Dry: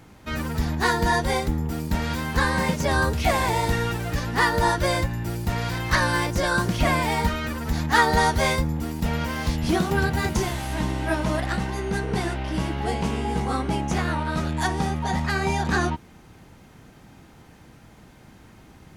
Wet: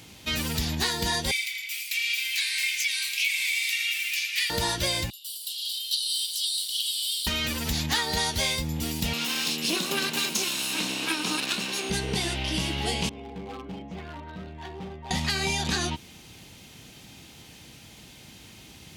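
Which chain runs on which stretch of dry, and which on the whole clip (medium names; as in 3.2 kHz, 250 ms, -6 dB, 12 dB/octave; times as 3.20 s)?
1.31–4.50 s: ladder high-pass 2.2 kHz, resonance 80% + tilt EQ +3 dB/octave + tape echo 79 ms, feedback 82%, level -9 dB, low-pass 5.9 kHz
5.10–7.27 s: rippled Chebyshev high-pass 2.9 kHz, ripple 6 dB + peaking EQ 6.5 kHz -12.5 dB 0.23 oct + bit-crushed delay 184 ms, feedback 55%, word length 8-bit, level -9 dB
9.13–11.90 s: comb filter that takes the minimum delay 0.75 ms + high-pass 210 Hz 24 dB/octave
13.09–15.11 s: Bessel low-pass 940 Hz + inharmonic resonator 95 Hz, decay 0.24 s, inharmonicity 0.002 + overload inside the chain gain 31 dB
whole clip: high-pass 51 Hz; resonant high shelf 2.1 kHz +11.5 dB, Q 1.5; compression, threshold -22 dBFS; trim -1.5 dB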